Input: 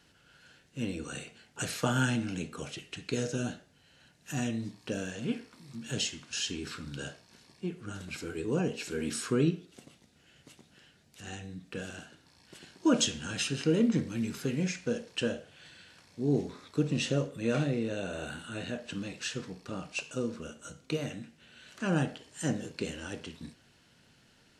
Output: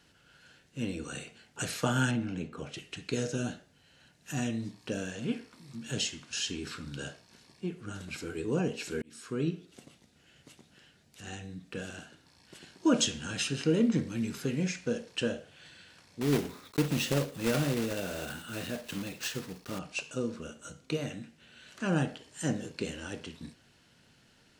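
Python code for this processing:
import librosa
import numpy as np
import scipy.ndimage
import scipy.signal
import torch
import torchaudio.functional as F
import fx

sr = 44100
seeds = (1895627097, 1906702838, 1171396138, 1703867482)

y = fx.lowpass(x, sr, hz=1800.0, slope=6, at=(2.11, 2.74))
y = fx.block_float(y, sr, bits=3, at=(16.21, 19.79))
y = fx.edit(y, sr, fx.fade_in_span(start_s=9.02, length_s=0.71), tone=tone)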